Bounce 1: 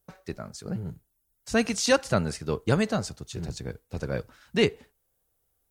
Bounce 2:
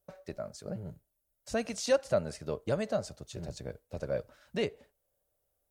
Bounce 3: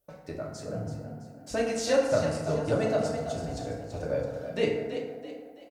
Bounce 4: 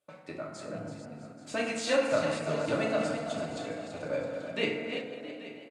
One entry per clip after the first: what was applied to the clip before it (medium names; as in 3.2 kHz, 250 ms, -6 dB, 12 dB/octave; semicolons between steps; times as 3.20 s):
compression 1.5:1, threshold -32 dBFS, peak gain reduction 6 dB; peaking EQ 590 Hz +14.5 dB 0.38 oct; trim -6.5 dB
frequency-shifting echo 331 ms, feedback 42%, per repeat +40 Hz, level -9 dB; FDN reverb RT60 1.3 s, low-frequency decay 1×, high-frequency decay 0.45×, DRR -2.5 dB
chunks repeated in reverse 266 ms, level -9 dB; cabinet simulation 210–9600 Hz, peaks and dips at 450 Hz -7 dB, 730 Hz -4 dB, 1.2 kHz +4 dB, 2.4 kHz +7 dB, 3.4 kHz +4 dB, 5.7 kHz -9 dB; delay 832 ms -16 dB